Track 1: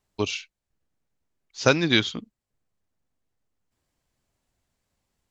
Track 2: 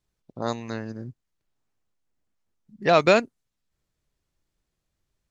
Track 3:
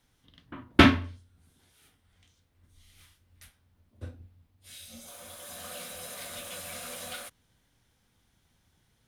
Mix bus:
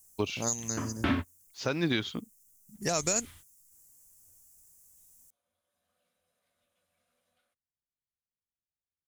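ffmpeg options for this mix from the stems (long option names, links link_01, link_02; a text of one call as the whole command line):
ffmpeg -i stem1.wav -i stem2.wav -i stem3.wav -filter_complex "[0:a]volume=-9dB[link_01];[1:a]bass=frequency=250:gain=6,treble=frequency=4000:gain=9,acompressor=threshold=-18dB:ratio=6,aexciter=amount=12.1:drive=9.2:freq=5900,volume=-13.5dB,asplit=2[link_02][link_03];[2:a]adelay=250,volume=0.5dB[link_04];[link_03]apad=whole_len=411420[link_05];[link_04][link_05]sidechaingate=range=-43dB:threshold=-57dB:ratio=16:detection=peak[link_06];[link_01][link_06]amix=inputs=2:normalize=0,highshelf=frequency=3100:gain=-6.5,acompressor=threshold=-25dB:ratio=3,volume=0dB[link_07];[link_02][link_07]amix=inputs=2:normalize=0,acontrast=69,alimiter=limit=-17dB:level=0:latency=1:release=181" out.wav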